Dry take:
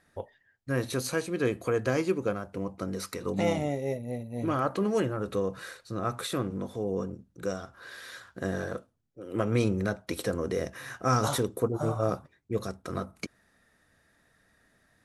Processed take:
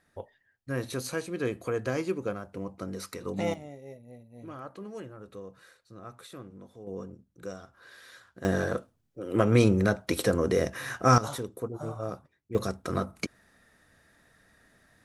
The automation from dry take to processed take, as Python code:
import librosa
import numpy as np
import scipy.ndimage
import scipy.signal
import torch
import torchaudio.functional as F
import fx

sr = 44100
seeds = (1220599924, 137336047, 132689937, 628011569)

y = fx.gain(x, sr, db=fx.steps((0.0, -3.0), (3.54, -14.0), (6.87, -7.0), (8.45, 5.0), (11.18, -7.0), (12.55, 4.0)))